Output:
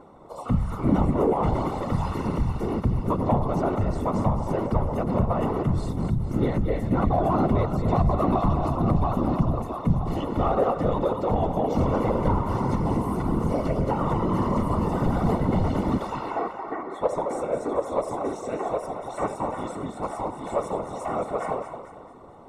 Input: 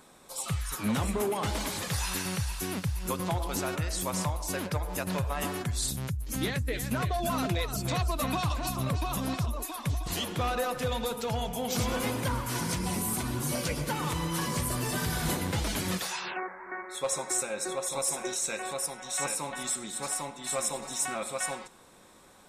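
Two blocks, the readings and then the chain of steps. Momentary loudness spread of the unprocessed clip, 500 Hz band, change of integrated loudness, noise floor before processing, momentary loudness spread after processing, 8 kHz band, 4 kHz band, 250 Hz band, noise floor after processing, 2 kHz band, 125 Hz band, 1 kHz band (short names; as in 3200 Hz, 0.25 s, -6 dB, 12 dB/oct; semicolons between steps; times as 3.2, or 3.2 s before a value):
4 LU, +9.0 dB, +5.5 dB, -47 dBFS, 8 LU, under -15 dB, -12.0 dB, +9.5 dB, -39 dBFS, -5.5 dB, +7.5 dB, +7.5 dB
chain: vibrato 3.3 Hz 31 cents; reverse; upward compressor, threshold -50 dBFS; reverse; thinning echo 0.223 s, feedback 44%, high-pass 220 Hz, level -9 dB; whisperiser; polynomial smoothing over 65 samples; in parallel at -9.5 dB: soft clip -27 dBFS, distortion -14 dB; on the sum: gain +6.5 dB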